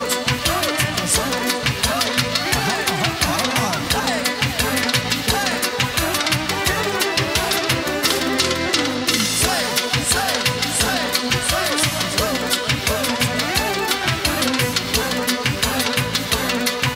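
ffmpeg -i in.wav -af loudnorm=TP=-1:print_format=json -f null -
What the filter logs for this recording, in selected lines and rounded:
"input_i" : "-18.5",
"input_tp" : "-3.6",
"input_lra" : "1.2",
"input_thresh" : "-28.5",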